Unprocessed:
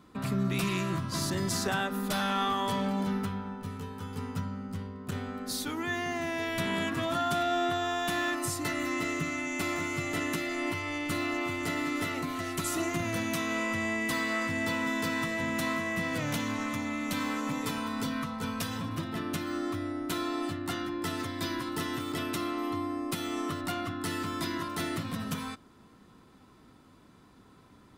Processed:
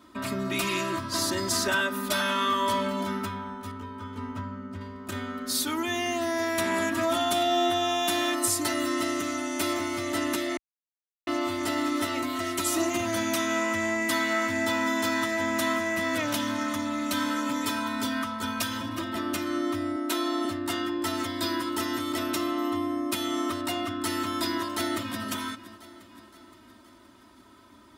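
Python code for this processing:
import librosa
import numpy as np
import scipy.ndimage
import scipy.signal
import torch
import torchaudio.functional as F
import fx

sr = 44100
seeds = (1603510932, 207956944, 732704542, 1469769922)

y = fx.lowpass(x, sr, hz=1600.0, slope=6, at=(3.71, 4.81))
y = fx.peak_eq(y, sr, hz=11000.0, db=4.5, octaves=1.3, at=(5.55, 9.73))
y = fx.highpass(y, sr, hz=230.0, slope=24, at=(19.96, 20.45))
y = fx.echo_throw(y, sr, start_s=24.54, length_s=0.71, ms=520, feedback_pct=55, wet_db=-15.5)
y = fx.edit(y, sr, fx.silence(start_s=10.57, length_s=0.7), tone=tone)
y = scipy.signal.sosfilt(scipy.signal.butter(2, 54.0, 'highpass', fs=sr, output='sos'), y)
y = fx.low_shelf(y, sr, hz=450.0, db=-5.5)
y = y + 1.0 * np.pad(y, (int(3.2 * sr / 1000.0), 0))[:len(y)]
y = y * 10.0 ** (3.0 / 20.0)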